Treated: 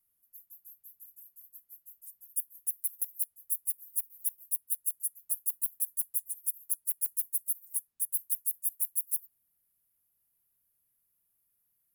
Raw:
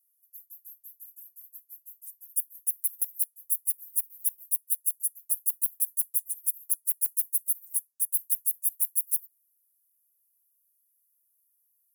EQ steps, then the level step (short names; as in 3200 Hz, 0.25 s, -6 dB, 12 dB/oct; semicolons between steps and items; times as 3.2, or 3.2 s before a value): tone controls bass +14 dB, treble -11 dB; notch 6000 Hz, Q 14; +6.5 dB